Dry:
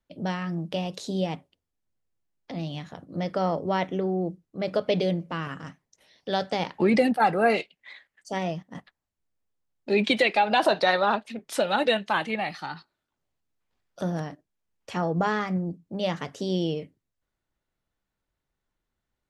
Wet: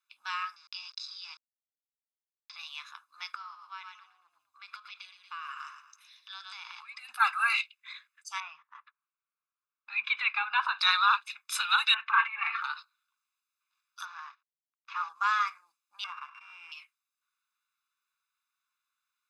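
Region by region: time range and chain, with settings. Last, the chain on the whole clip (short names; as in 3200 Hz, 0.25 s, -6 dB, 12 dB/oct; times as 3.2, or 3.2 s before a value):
0.56–2.56 sample gate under -40 dBFS + ladder low-pass 5200 Hz, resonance 80%
3.32–7.09 frequency-shifting echo 0.115 s, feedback 37%, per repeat -34 Hz, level -11 dB + compressor 8:1, threshold -35 dBFS
8.4–10.79 LPF 1800 Hz + bell 150 Hz +13.5 dB 1.1 oct
11.94–12.64 LPF 2200 Hz 24 dB/oct + comb 4.4 ms, depth 75% + transient shaper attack -11 dB, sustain +10 dB
14.05–15.09 CVSD 32 kbps + band-pass 1000 Hz, Q 0.87
16.04–16.72 sample sorter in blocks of 16 samples + LPF 1000 Hz + sustainer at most 78 dB/s
whole clip: elliptic high-pass 1100 Hz, stop band 60 dB; comb 0.8 ms, depth 80%; gain +1.5 dB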